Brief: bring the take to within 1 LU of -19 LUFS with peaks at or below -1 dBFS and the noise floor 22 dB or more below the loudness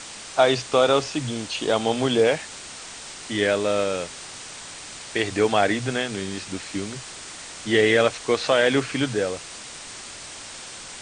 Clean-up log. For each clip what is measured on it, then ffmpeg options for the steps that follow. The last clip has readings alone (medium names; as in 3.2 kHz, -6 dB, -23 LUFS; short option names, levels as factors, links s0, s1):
noise floor -39 dBFS; noise floor target -45 dBFS; loudness -23.0 LUFS; peak level -5.0 dBFS; loudness target -19.0 LUFS
-> -af "afftdn=nr=6:nf=-39"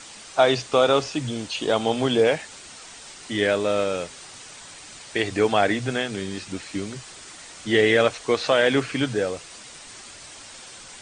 noise floor -43 dBFS; noise floor target -45 dBFS
-> -af "afftdn=nr=6:nf=-43"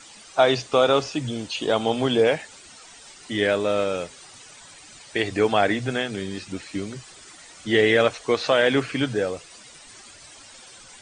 noise floor -47 dBFS; loudness -23.0 LUFS; peak level -5.5 dBFS; loudness target -19.0 LUFS
-> -af "volume=1.58"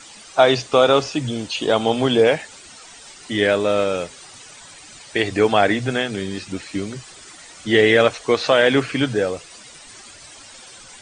loudness -19.0 LUFS; peak level -1.5 dBFS; noise floor -43 dBFS